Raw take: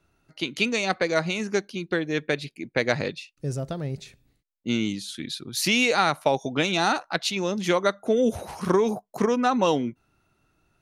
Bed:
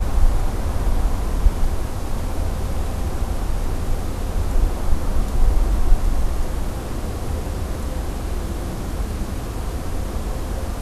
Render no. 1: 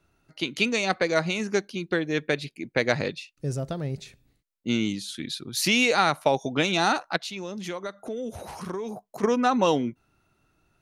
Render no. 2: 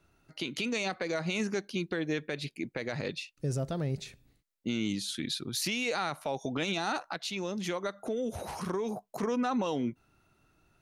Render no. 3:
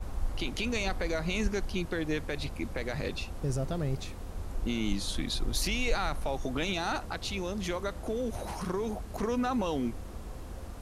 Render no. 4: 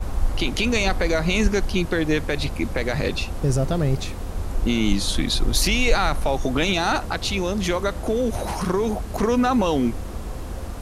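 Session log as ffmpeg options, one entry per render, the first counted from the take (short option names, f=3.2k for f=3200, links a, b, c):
-filter_complex "[0:a]asplit=3[a][b][c];[a]afade=t=out:st=7.16:d=0.02[d];[b]acompressor=threshold=-35dB:ratio=2.5:attack=3.2:release=140:knee=1:detection=peak,afade=t=in:st=7.16:d=0.02,afade=t=out:st=9.22:d=0.02[e];[c]afade=t=in:st=9.22:d=0.02[f];[d][e][f]amix=inputs=3:normalize=0"
-af "acompressor=threshold=-26dB:ratio=3,alimiter=limit=-22.5dB:level=0:latency=1:release=26"
-filter_complex "[1:a]volume=-16.5dB[a];[0:a][a]amix=inputs=2:normalize=0"
-af "volume=10.5dB"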